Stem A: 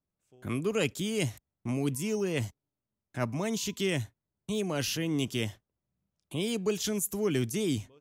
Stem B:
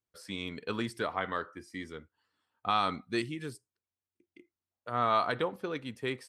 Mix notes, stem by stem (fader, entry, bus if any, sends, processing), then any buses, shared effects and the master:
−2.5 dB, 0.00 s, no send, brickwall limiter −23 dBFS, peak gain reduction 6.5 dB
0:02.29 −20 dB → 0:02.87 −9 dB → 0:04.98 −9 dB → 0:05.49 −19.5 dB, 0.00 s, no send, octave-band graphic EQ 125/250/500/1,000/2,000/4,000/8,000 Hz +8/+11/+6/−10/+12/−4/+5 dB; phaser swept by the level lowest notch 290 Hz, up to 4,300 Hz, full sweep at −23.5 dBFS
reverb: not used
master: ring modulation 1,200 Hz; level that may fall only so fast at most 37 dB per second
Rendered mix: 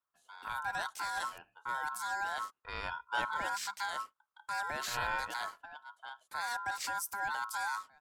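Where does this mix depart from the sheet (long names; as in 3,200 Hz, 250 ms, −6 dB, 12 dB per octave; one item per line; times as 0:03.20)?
stem B: missing phaser swept by the level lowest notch 290 Hz, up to 4,300 Hz, full sweep at −23.5 dBFS
master: missing level that may fall only so fast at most 37 dB per second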